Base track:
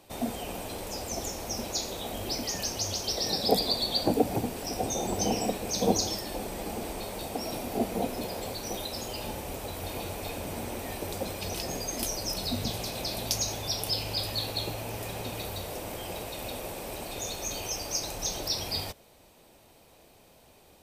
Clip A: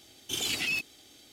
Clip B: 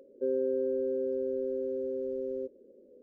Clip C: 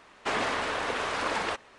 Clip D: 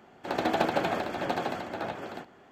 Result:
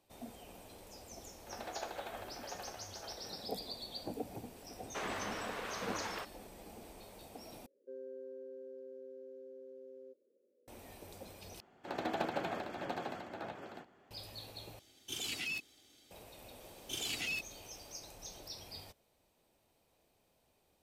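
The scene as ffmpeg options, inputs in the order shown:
ffmpeg -i bed.wav -i cue0.wav -i cue1.wav -i cue2.wav -i cue3.wav -filter_complex "[4:a]asplit=2[link_01][link_02];[1:a]asplit=2[link_03][link_04];[0:a]volume=-17dB[link_05];[link_01]highpass=frequency=420:width=0.5412,highpass=frequency=420:width=1.3066[link_06];[2:a]highpass=frequency=800:poles=1[link_07];[link_05]asplit=4[link_08][link_09][link_10][link_11];[link_08]atrim=end=7.664[link_12];[link_07]atrim=end=3.02,asetpts=PTS-STARTPTS,volume=-11.5dB[link_13];[link_09]atrim=start=10.676:end=11.604[link_14];[link_02]atrim=end=2.51,asetpts=PTS-STARTPTS,volume=-10dB[link_15];[link_10]atrim=start=14.106:end=14.794[link_16];[link_03]atrim=end=1.32,asetpts=PTS-STARTPTS,volume=-9dB[link_17];[link_11]atrim=start=16.106[link_18];[link_06]atrim=end=2.51,asetpts=PTS-STARTPTS,volume=-16dB,afade=type=in:duration=0.004:curve=hsin,afade=type=out:start_time=2.506:duration=0.004:curve=hsin,adelay=1220[link_19];[3:a]atrim=end=1.78,asetpts=PTS-STARTPTS,volume=-12dB,afade=type=in:duration=0.004:curve=hsin,afade=type=out:start_time=1.776:duration=0.004:curve=hsin,adelay=206829S[link_20];[link_04]atrim=end=1.32,asetpts=PTS-STARTPTS,volume=-8dB,afade=type=in:duration=0.004:curve=hsin,afade=type=out:start_time=1.316:duration=0.004:curve=hsin,adelay=16600[link_21];[link_12][link_13]acrossfade=duration=0.004:curve1=hsin:curve2=hsin[link_22];[link_22][link_14]acrossfade=duration=0.004:curve1=hsin:curve2=hsin[link_23];[link_23][link_15]acrossfade=duration=0.004:curve1=hsin:curve2=hsin[link_24];[link_24][link_16]acrossfade=duration=0.004:curve1=hsin:curve2=hsin[link_25];[link_25][link_17]acrossfade=duration=0.004:curve1=hsin:curve2=hsin[link_26];[link_26][link_18]acrossfade=duration=0.004:curve1=hsin:curve2=hsin[link_27];[link_27][link_19][link_20][link_21]amix=inputs=4:normalize=0" out.wav

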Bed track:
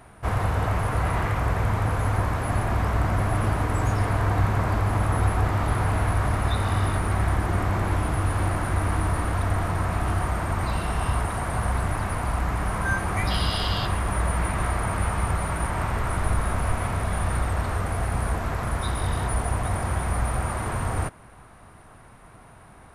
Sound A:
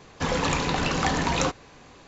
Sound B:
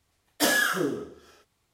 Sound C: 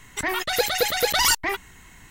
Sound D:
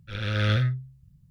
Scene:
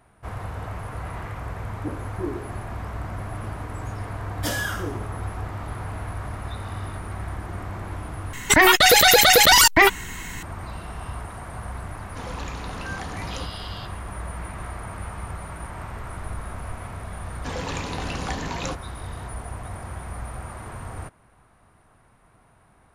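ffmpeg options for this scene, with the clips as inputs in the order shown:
ffmpeg -i bed.wav -i cue0.wav -i cue1.wav -i cue2.wav -filter_complex "[2:a]asplit=2[link_01][link_02];[1:a]asplit=2[link_03][link_04];[0:a]volume=-9dB[link_05];[link_01]lowpass=frequency=360:width_type=q:width=4.1[link_06];[3:a]alimiter=level_in=17dB:limit=-1dB:release=50:level=0:latency=1[link_07];[link_03]aresample=16000,aresample=44100[link_08];[link_04]equalizer=frequency=1300:width=6.7:gain=-4[link_09];[link_05]asplit=2[link_10][link_11];[link_10]atrim=end=8.334[link_12];[link_07]atrim=end=2.1,asetpts=PTS-STARTPTS,volume=-3dB[link_13];[link_11]atrim=start=10.426[link_14];[link_06]atrim=end=1.73,asetpts=PTS-STARTPTS,volume=-11.5dB,afade=type=in:duration=0.004:curve=hsin,afade=type=out:start_time=1.726:duration=0.004:curve=hsin,adelay=1430[link_15];[link_02]atrim=end=1.73,asetpts=PTS-STARTPTS,volume=-5dB,afade=type=in:duration=0.004:curve=hsin,afade=type=out:start_time=1.726:duration=0.004:curve=hsin,adelay=4030[link_16];[link_08]atrim=end=2.07,asetpts=PTS-STARTPTS,volume=-12dB,afade=type=in:duration=0.004:curve=hsin,afade=type=out:start_time=2.066:duration=0.004:curve=hsin,adelay=11950[link_17];[link_09]atrim=end=2.07,asetpts=PTS-STARTPTS,volume=-6dB,afade=type=in:duration=0.004:curve=hsin,afade=type=out:start_time=2.066:duration=0.004:curve=hsin,adelay=17240[link_18];[link_12][link_13]acrossfade=duration=0.004:curve1=hsin:curve2=hsin[link_19];[link_19][link_14]acrossfade=duration=0.004:curve1=hsin:curve2=hsin[link_20];[link_20][link_15][link_16][link_17][link_18]amix=inputs=5:normalize=0" out.wav

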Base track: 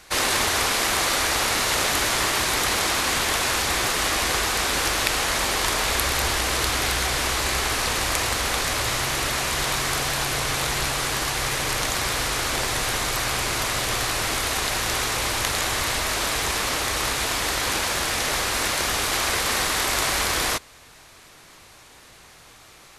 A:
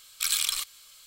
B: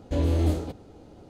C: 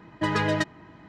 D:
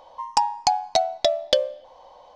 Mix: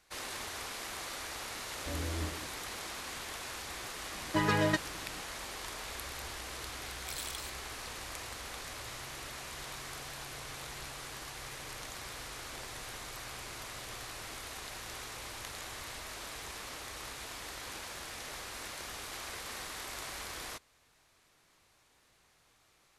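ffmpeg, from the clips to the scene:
ffmpeg -i bed.wav -i cue0.wav -i cue1.wav -i cue2.wav -filter_complex "[0:a]volume=-19.5dB[link_01];[2:a]atrim=end=1.29,asetpts=PTS-STARTPTS,volume=-14.5dB,afade=type=in:duration=0.004:curve=hsin,afade=type=out:start_time=1.286:duration=0.004:curve=hsin,adelay=1750[link_02];[3:a]atrim=end=1.08,asetpts=PTS-STARTPTS,volume=-4dB,afade=type=in:duration=0.004:curve=hsin,afade=type=out:start_time=1.076:duration=0.004:curve=hsin,adelay=182133S[link_03];[1:a]atrim=end=1.06,asetpts=PTS-STARTPTS,volume=-16dB,afade=type=in:duration=0.004:curve=hsin,afade=type=out:start_time=1.056:duration=0.004:curve=hsin,adelay=6860[link_04];[link_01][link_02][link_03][link_04]amix=inputs=4:normalize=0" out.wav

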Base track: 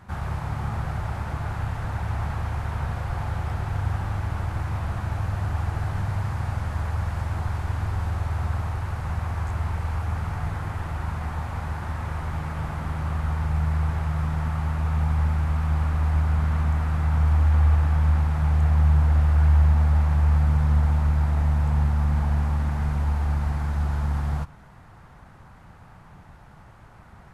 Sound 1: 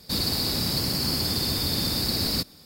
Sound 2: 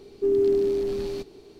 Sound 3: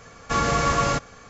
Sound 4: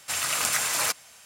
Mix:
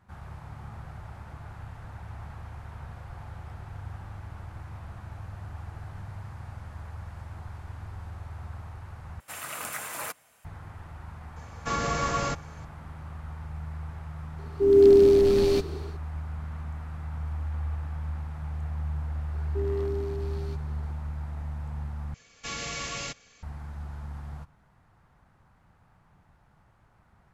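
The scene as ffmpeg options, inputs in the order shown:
ffmpeg -i bed.wav -i cue0.wav -i cue1.wav -i cue2.wav -i cue3.wav -filter_complex "[3:a]asplit=2[link_01][link_02];[2:a]asplit=2[link_03][link_04];[0:a]volume=-13.5dB[link_05];[4:a]equalizer=frequency=5100:width=0.66:gain=-14[link_06];[link_03]dynaudnorm=framelen=130:gausssize=5:maxgain=14.5dB[link_07];[link_04]aeval=exprs='0.141*(abs(mod(val(0)/0.141+3,4)-2)-1)':channel_layout=same[link_08];[link_02]highshelf=frequency=1800:width_type=q:width=1.5:gain=10[link_09];[link_05]asplit=3[link_10][link_11][link_12];[link_10]atrim=end=9.204[link_13];[link_06]atrim=end=1.25,asetpts=PTS-STARTPTS,volume=-4.5dB[link_14];[link_11]atrim=start=10.446:end=22.144[link_15];[link_09]atrim=end=1.29,asetpts=PTS-STARTPTS,volume=-16dB[link_16];[link_12]atrim=start=23.426[link_17];[link_01]atrim=end=1.29,asetpts=PTS-STARTPTS,volume=-6.5dB,afade=type=in:duration=0.004:curve=hsin,afade=type=out:start_time=1.286:duration=0.004:curve=hsin,adelay=11360[link_18];[link_07]atrim=end=1.59,asetpts=PTS-STARTPTS,volume=-5dB,afade=type=in:duration=0.004:curve=hsin,afade=type=out:start_time=1.586:duration=0.004:curve=hsin,adelay=14380[link_19];[link_08]atrim=end=1.59,asetpts=PTS-STARTPTS,volume=-10dB,afade=type=in:duration=0.004:curve=hsin,afade=type=out:start_time=1.586:duration=0.004:curve=hsin,adelay=19330[link_20];[link_13][link_14]acrossfade=duration=0.004:curve1=hsin:curve2=hsin[link_21];[link_21][link_15]acrossfade=duration=0.004:curve1=hsin:curve2=hsin[link_22];[link_22][link_16]acrossfade=duration=0.004:curve1=hsin:curve2=hsin[link_23];[link_23][link_17]acrossfade=duration=0.004:curve1=hsin:curve2=hsin[link_24];[link_24][link_18][link_19][link_20]amix=inputs=4:normalize=0" out.wav

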